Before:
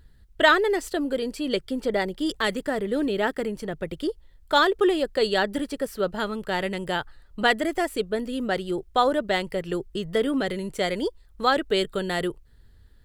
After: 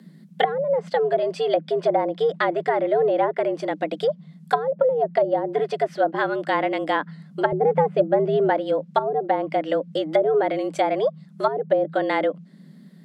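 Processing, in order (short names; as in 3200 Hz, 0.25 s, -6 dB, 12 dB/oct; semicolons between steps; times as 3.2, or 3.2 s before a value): treble ducked by the level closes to 300 Hz, closed at -17.5 dBFS; frequency shift +150 Hz; 7.52–8.5 RIAA curve playback; gain +5.5 dB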